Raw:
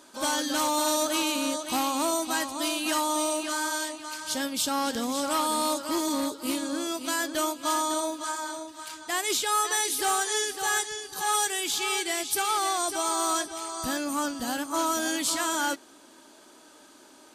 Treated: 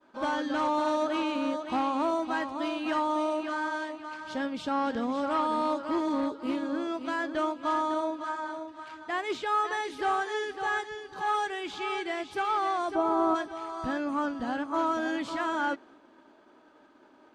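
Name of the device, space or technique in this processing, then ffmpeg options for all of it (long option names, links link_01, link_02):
hearing-loss simulation: -filter_complex "[0:a]asplit=3[link_01][link_02][link_03];[link_01]afade=type=out:start_time=12.94:duration=0.02[link_04];[link_02]tiltshelf=frequency=1200:gain=9,afade=type=in:start_time=12.94:duration=0.02,afade=type=out:start_time=13.34:duration=0.02[link_05];[link_03]afade=type=in:start_time=13.34:duration=0.02[link_06];[link_04][link_05][link_06]amix=inputs=3:normalize=0,lowpass=1900,agate=range=-33dB:threshold=-51dB:ratio=3:detection=peak"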